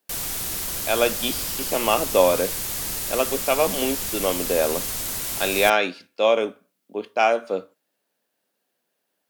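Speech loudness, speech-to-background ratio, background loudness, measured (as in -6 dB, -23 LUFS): -23.0 LUFS, 3.0 dB, -26.0 LUFS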